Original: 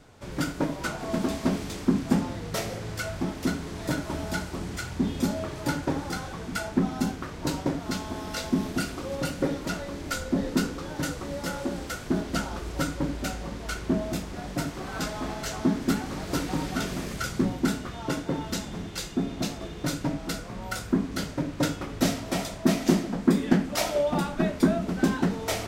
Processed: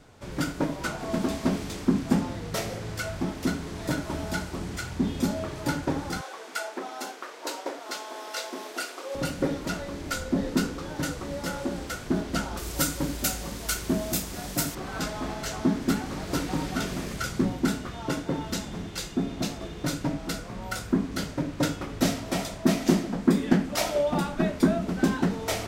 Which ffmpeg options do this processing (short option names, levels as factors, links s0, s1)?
-filter_complex "[0:a]asettb=1/sr,asplit=3[s0][s1][s2];[s0]atrim=end=6.214[s3];[s1]atrim=start=6.21:end=9.15,asetpts=PTS-STARTPTS,afade=t=in:d=0.004:c=qsin,afade=t=out:st=2.936:d=0.004:c=qsin,highpass=f=420:w=0.5412,highpass=f=420:w=1.3066[s4];[s2]atrim=start=9.146[s5];[s3][s4]acrossfade=d=0.004:c1=hsin:c2=qsin[s6];[s6][s5]acrossfade=d=0.004:c1=qsin:c2=hsin,asettb=1/sr,asplit=3[s7][s8][s9];[s7]atrim=end=12.574[s10];[s8]atrim=start=12.57:end=14.75,asetpts=PTS-STARTPTS,afade=t=in:d=0.004:c=qsin,afade=t=out:st=2.176:d=0.004:c=qsin,aemphasis=mode=production:type=75fm[s11];[s9]atrim=start=14.746[s12];[s10][s11]acrossfade=d=0.004:c1=hsin:c2=qsin[s13];[s13][s12]acrossfade=d=0.004:c1=qsin:c2=hsin"